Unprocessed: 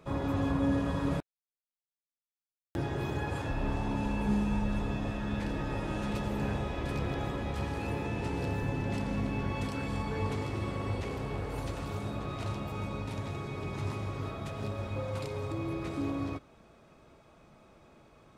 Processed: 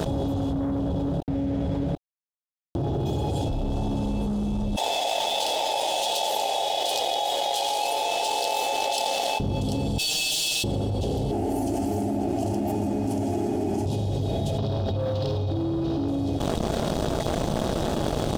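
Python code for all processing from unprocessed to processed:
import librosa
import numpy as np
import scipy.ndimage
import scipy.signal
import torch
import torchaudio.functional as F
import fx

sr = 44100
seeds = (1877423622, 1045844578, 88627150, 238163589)

y = fx.chain(x, sr, fx.law_mismatch(coded='mu'),
    fx.lowpass(hz=1700.0, slope=6),
    fx.echo_single(ms=748, db=-13.5), at=(0.53, 3.06))
y = fx.chain(y, sr, fx.highpass(hz=750.0, slope=24),
    fx.notch(hz=980.0, q=14.0), at=(4.76, 9.4))
y = fx.chain(y, sr, fx.cheby1_highpass(hz=1300.0, order=10),
    fx.leveller(passes=3),
    fx.comb(ms=6.5, depth=0.8), at=(9.98, 10.64))
y = fx.chain(y, sr, fx.highpass(hz=160.0, slope=12),
    fx.low_shelf(hz=370.0, db=6.5),
    fx.fixed_phaser(hz=750.0, stages=8), at=(11.31, 13.86))
y = fx.chain(y, sr, fx.steep_lowpass(hz=5400.0, slope=36),
    fx.room_flutter(wall_m=8.8, rt60_s=0.5),
    fx.env_flatten(amount_pct=100), at=(14.58, 16.08))
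y = scipy.signal.sosfilt(scipy.signal.ellip(3, 1.0, 40, [800.0, 3100.0], 'bandstop', fs=sr, output='sos'), y)
y = fx.leveller(y, sr, passes=2)
y = fx.env_flatten(y, sr, amount_pct=100)
y = F.gain(torch.from_numpy(y), -3.5).numpy()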